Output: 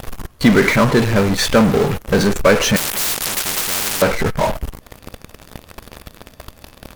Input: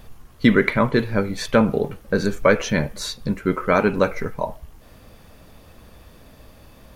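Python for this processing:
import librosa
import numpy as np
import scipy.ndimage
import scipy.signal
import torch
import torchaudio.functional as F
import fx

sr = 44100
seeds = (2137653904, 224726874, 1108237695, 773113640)

p1 = fx.fuzz(x, sr, gain_db=41.0, gate_db=-40.0)
p2 = x + (p1 * librosa.db_to_amplitude(-4.0))
y = fx.spectral_comp(p2, sr, ratio=10.0, at=(2.76, 4.02))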